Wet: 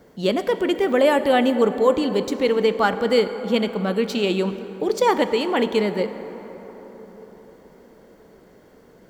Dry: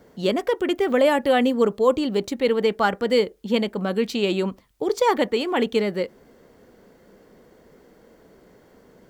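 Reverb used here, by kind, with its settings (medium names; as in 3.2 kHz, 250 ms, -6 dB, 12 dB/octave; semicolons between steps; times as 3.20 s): plate-style reverb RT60 4.8 s, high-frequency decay 0.4×, DRR 10 dB; trim +1 dB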